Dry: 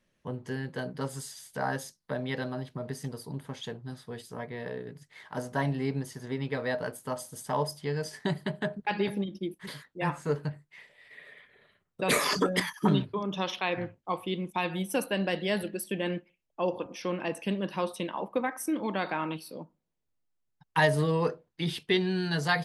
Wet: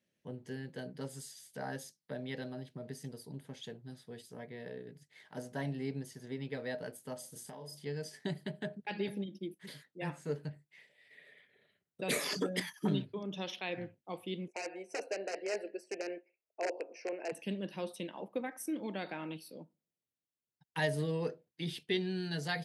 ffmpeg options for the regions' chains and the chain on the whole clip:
-filter_complex "[0:a]asettb=1/sr,asplit=3[a][b][c];[a]atrim=end=7.204[d];[b]atrim=start=7.2:end=7.86,asetpts=PTS-STARTPTS,afade=t=in:d=0.004:c=qsin,afade=t=out:st=0.656:d=0.004:c=qsin,asplit=2[e][f];[f]adelay=33,volume=-4.5dB[g];[e][g]amix=inputs=2:normalize=0,atrim=end_sample=29106,acompressor=threshold=-35dB:ratio=6:attack=3.2:release=140:knee=1:detection=peak[h];[c]atrim=start=7.856[i];[d][h]acrossfade=d=0.004:c1=hsin:c2=qsin[j];[j][i]acrossfade=d=0.004:c1=qsin:c2=hsin,asettb=1/sr,asplit=3[k][l][m];[k]atrim=end=14.484[n];[l]atrim=start=14.48:end=17.32,asetpts=PTS-STARTPTS,afade=t=in:d=0.004:c=qsin,afade=t=out:st=2.836:d=0.004:c=qsin,aeval=exprs='(mod(11.2*val(0)+1,2)-1)/11.2':c=same,asuperstop=centerf=3500:order=4:qfactor=1.3,highpass=f=360:w=0.5412,highpass=f=360:w=1.3066,equalizer=f=420:t=q:w=4:g=7,equalizer=f=660:t=q:w=4:g=8,equalizer=f=1.2k:t=q:w=4:g=-6,equalizer=f=2.5k:t=q:w=4:g=4,equalizer=f=3.7k:t=q:w=4:g=8,equalizer=f=5.6k:t=q:w=4:g=-3,lowpass=f=6.4k:w=0.5412,lowpass=f=6.4k:w=1.3066[o];[m]atrim=start=17.316[p];[n][o]acrossfade=d=0.004:c1=hsin:c2=qsin[q];[q][p]acrossfade=d=0.004:c1=qsin:c2=hsin,highpass=120,equalizer=f=1.1k:w=1.8:g=-11,volume=-6.5dB"

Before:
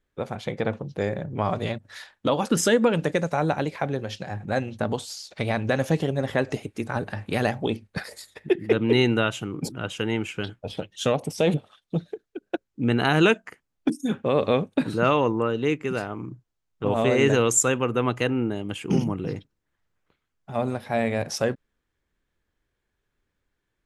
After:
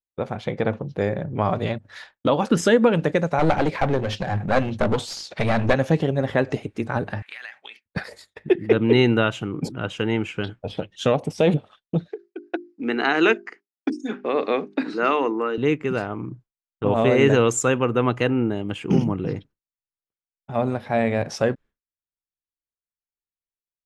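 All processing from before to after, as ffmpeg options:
-filter_complex "[0:a]asettb=1/sr,asplit=3[a][b][c];[a]atrim=end=3.394[d];[b]atrim=start=3.39:end=5.74,asetpts=PTS-STARTPTS,afade=t=in:d=0.004:c=qsin,afade=t=out:st=2.346:d=0.004:c=qsin,highpass=58,acontrast=72,aeval=exprs='clip(val(0),-1,0.0473)':c=same[e];[c]atrim=start=5.736[f];[d][e]acrossfade=d=0.004:c1=hsin:c2=qsin[g];[g][f]acrossfade=d=0.004:c1=qsin:c2=hsin,asettb=1/sr,asplit=3[h][i][j];[h]atrim=end=7.224[k];[i]atrim=start=7.22:end=7.86,asetpts=PTS-STARTPTS,afade=t=in:d=0.004:c=qsin,afade=t=out:st=0.636:d=0.004:c=qsin,highpass=f=1.9k:t=q:w=2.4,acompressor=threshold=-35dB:ratio=8:attack=3.2:release=140:knee=1:detection=peak[l];[j]atrim=start=7.856[m];[k][l]acrossfade=d=0.004:c1=hsin:c2=qsin[n];[n][m]acrossfade=d=0.004:c1=qsin:c2=hsin,asettb=1/sr,asplit=3[o][p][q];[o]atrim=end=12.084[r];[p]atrim=start=12.08:end=15.58,asetpts=PTS-STARTPTS,afade=t=in:d=0.004:c=qsin,afade=t=out:st=3.496:d=0.004:c=qsin,highpass=f=270:w=0.5412,highpass=f=270:w=1.3066,equalizer=f=560:t=q:w=4:g=-8,equalizer=f=940:t=q:w=4:g=-3,equalizer=f=2k:t=q:w=4:g=4,equalizer=f=3.3k:t=q:w=4:g=-5,equalizer=f=4.9k:t=q:w=4:g=7,lowpass=f=7.2k:w=0.5412,lowpass=f=7.2k:w=1.3066,bandreject=f=50:t=h:w=6,bandreject=f=100:t=h:w=6,bandreject=f=150:t=h:w=6,bandreject=f=200:t=h:w=6,bandreject=f=250:t=h:w=6,bandreject=f=300:t=h:w=6,bandreject=f=350:t=h:w=6,bandreject=f=400:t=h:w=6[s];[q]atrim=start=15.576[t];[r][s]acrossfade=d=0.004:c1=hsin:c2=qsin[u];[u][t]acrossfade=d=0.004:c1=qsin:c2=hsin,aemphasis=mode=reproduction:type=50fm,agate=range=-33dB:threshold=-43dB:ratio=3:detection=peak,volume=3dB"

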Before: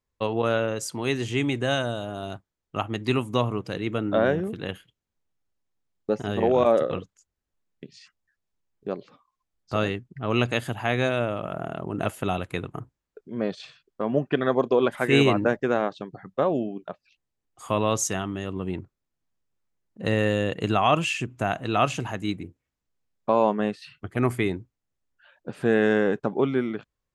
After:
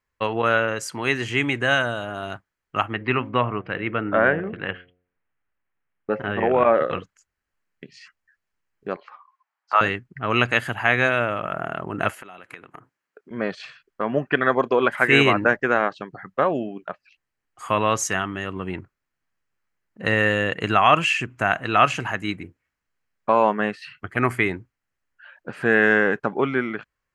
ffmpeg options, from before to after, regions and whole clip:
-filter_complex "[0:a]asettb=1/sr,asplit=3[a][b][c];[a]atrim=end=2.934[d];[b]atrim=start=2.93:end=6.82,asetpts=PTS-STARTPTS,afade=t=in:d=0.004:c=qsin,afade=t=out:st=3.886:d=0.004:c=qsin,lowpass=f=2.9k:w=0.5412,lowpass=f=2.9k:w=1.3066,bandreject=f=89.76:t=h:w=4,bandreject=f=179.52:t=h:w=4,bandreject=f=269.28:t=h:w=4,bandreject=f=359.04:t=h:w=4,bandreject=f=448.8:t=h:w=4,bandreject=f=538.56:t=h:w=4,bandreject=f=628.32:t=h:w=4,bandreject=f=718.08:t=h:w=4[e];[c]atrim=start=6.816[f];[d][e]acrossfade=d=0.004:c1=hsin:c2=qsin[g];[g][f]acrossfade=d=0.004:c1=qsin:c2=hsin,asettb=1/sr,asplit=3[h][i][j];[h]atrim=end=8.964[k];[i]atrim=start=8.96:end=9.81,asetpts=PTS-STARTPTS,afade=t=in:d=0.004:c=qsin,afade=t=out:st=0.846:d=0.004:c=qsin,highpass=f=910:t=q:w=3.1,aemphasis=mode=reproduction:type=50fm[l];[j]atrim=start=9.806[m];[k][l]acrossfade=d=0.004:c1=hsin:c2=qsin[n];[n][m]acrossfade=d=0.004:c1=qsin:c2=hsin,asettb=1/sr,asplit=3[o][p][q];[o]atrim=end=12.144[r];[p]atrim=start=12.14:end=13.31,asetpts=PTS-STARTPTS,afade=t=in:d=0.004:c=qsin,afade=t=out:st=1.166:d=0.004:c=qsin,highpass=210,acompressor=threshold=-41dB:ratio=16:attack=3.2:release=140:knee=1:detection=peak[s];[q]atrim=start=13.306[t];[r][s]acrossfade=d=0.004:c1=hsin:c2=qsin[u];[u][t]acrossfade=d=0.004:c1=qsin:c2=hsin,equalizer=f=1.7k:t=o:w=1.7:g=12.5,bandreject=f=3.6k:w=9.5,volume=-1dB"

